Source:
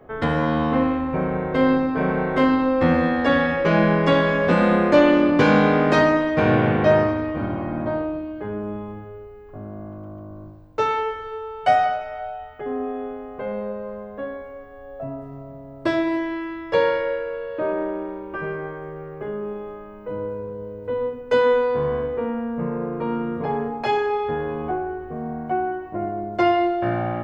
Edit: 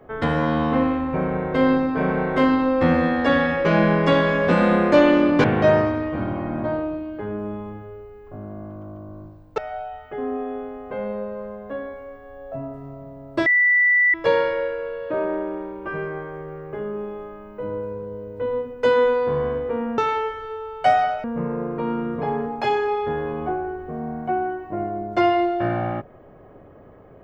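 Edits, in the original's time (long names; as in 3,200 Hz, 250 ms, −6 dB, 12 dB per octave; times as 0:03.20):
0:05.44–0:06.66: remove
0:10.80–0:12.06: move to 0:22.46
0:15.94–0:16.62: beep over 1,970 Hz −13.5 dBFS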